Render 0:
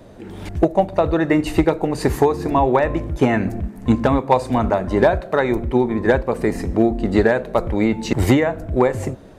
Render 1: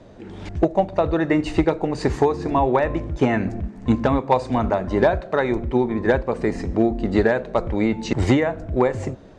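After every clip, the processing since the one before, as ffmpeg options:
-af "lowpass=f=7.2k:w=0.5412,lowpass=f=7.2k:w=1.3066,volume=-2.5dB"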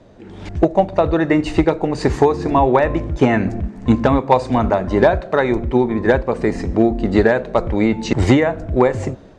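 -af "dynaudnorm=f=180:g=5:m=11.5dB,volume=-1dB"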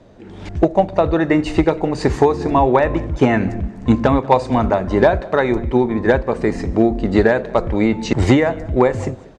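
-af "aecho=1:1:190|380:0.0794|0.0214"

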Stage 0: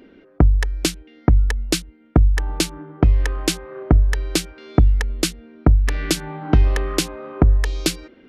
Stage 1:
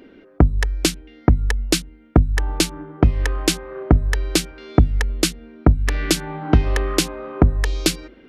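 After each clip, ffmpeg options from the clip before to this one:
-af "bandreject=f=50:t=h:w=6,bandreject=f=100:t=h:w=6,bandreject=f=150:t=h:w=6,bandreject=f=200:t=h:w=6,bandreject=f=250:t=h:w=6,volume=2dB"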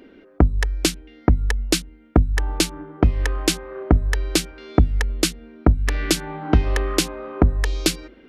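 -af "equalizer=f=130:t=o:w=0.38:g=-8,volume=-1dB"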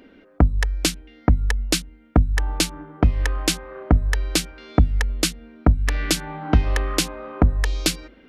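-af "equalizer=f=370:t=o:w=0.45:g=-7"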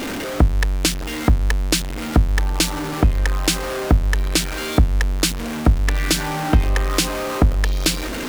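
-af "aeval=exprs='val(0)+0.5*0.0891*sgn(val(0))':c=same"

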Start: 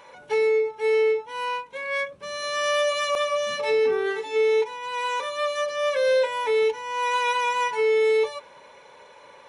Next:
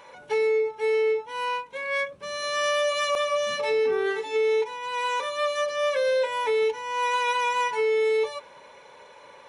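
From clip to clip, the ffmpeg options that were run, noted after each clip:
-af "alimiter=limit=-17.5dB:level=0:latency=1:release=91"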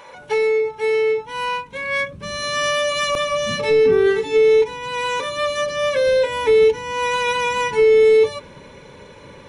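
-af "asubboost=boost=11.5:cutoff=220,volume=6.5dB"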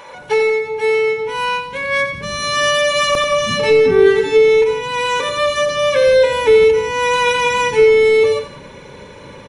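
-af "aecho=1:1:88|177:0.335|0.178,volume=4.5dB"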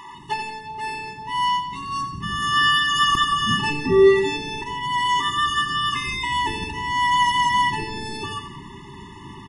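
-af "afftfilt=real='re*eq(mod(floor(b*sr/1024/430),2),0)':imag='im*eq(mod(floor(b*sr/1024/430),2),0)':win_size=1024:overlap=0.75"

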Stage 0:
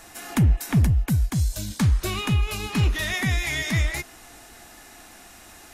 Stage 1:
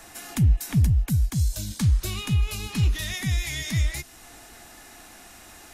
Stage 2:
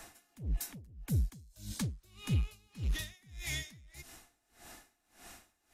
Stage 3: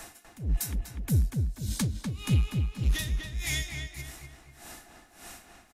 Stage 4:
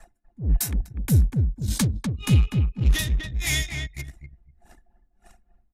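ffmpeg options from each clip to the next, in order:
-filter_complex "[0:a]acrossover=split=200|3000[a][b][c];[b]acompressor=threshold=-46dB:ratio=2[d];[a][d][c]amix=inputs=3:normalize=0"
-af "asoftclip=type=tanh:threshold=-20dB,aeval=exprs='val(0)*pow(10,-29*(0.5-0.5*cos(2*PI*1.7*n/s))/20)':c=same,volume=-4dB"
-filter_complex "[0:a]equalizer=f=10k:t=o:w=0.77:g=2,asplit=2[a][b];[b]adelay=246,lowpass=f=2.7k:p=1,volume=-4.5dB,asplit=2[c][d];[d]adelay=246,lowpass=f=2.7k:p=1,volume=0.45,asplit=2[e][f];[f]adelay=246,lowpass=f=2.7k:p=1,volume=0.45,asplit=2[g][h];[h]adelay=246,lowpass=f=2.7k:p=1,volume=0.45,asplit=2[i][j];[j]adelay=246,lowpass=f=2.7k:p=1,volume=0.45,asplit=2[k][l];[l]adelay=246,lowpass=f=2.7k:p=1,volume=0.45[m];[c][e][g][i][k][m]amix=inputs=6:normalize=0[n];[a][n]amix=inputs=2:normalize=0,volume=6.5dB"
-af "anlmdn=0.398,volume=6.5dB"

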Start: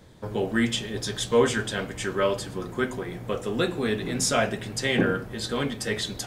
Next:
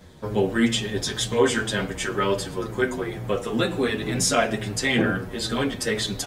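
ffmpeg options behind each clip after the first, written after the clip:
-filter_complex "[0:a]asplit=2[a][b];[b]alimiter=limit=-17.5dB:level=0:latency=1:release=95,volume=-1dB[c];[a][c]amix=inputs=2:normalize=0,asplit=2[d][e];[e]adelay=7.8,afreqshift=-2.1[f];[d][f]amix=inputs=2:normalize=1,volume=1.5dB"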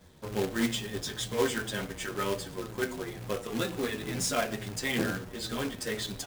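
-af "acrusher=bits=2:mode=log:mix=0:aa=0.000001,aeval=exprs='0.668*(cos(1*acos(clip(val(0)/0.668,-1,1)))-cos(1*PI/2))+0.0841*(cos(3*acos(clip(val(0)/0.668,-1,1)))-cos(3*PI/2))':c=same,asoftclip=type=tanh:threshold=-8dB,volume=-5dB"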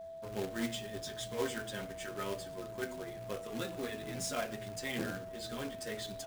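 -af "aeval=exprs='val(0)+0.0158*sin(2*PI*660*n/s)':c=same,volume=-8dB"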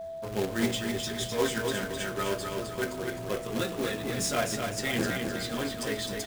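-af "aecho=1:1:257|514|771|1028|1285:0.562|0.231|0.0945|0.0388|0.0159,volume=8dB"

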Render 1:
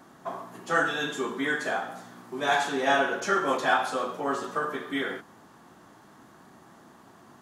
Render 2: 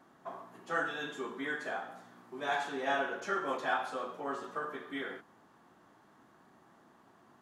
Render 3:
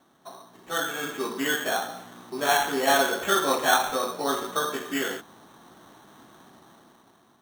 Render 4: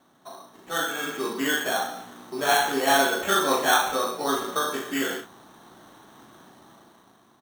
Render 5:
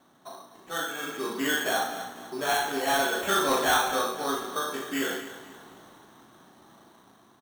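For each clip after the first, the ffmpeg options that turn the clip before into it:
-af "bass=f=250:g=-3,treble=f=4k:g=-6,volume=-8.5dB"
-af "acrusher=samples=9:mix=1:aa=0.000001,dynaudnorm=f=280:g=7:m=11dB"
-af "aecho=1:1:37|69:0.531|0.251"
-af "tremolo=f=0.55:d=0.4,aecho=1:1:248|496|744|992:0.2|0.0758|0.0288|0.0109,asoftclip=type=tanh:threshold=-16.5dB"

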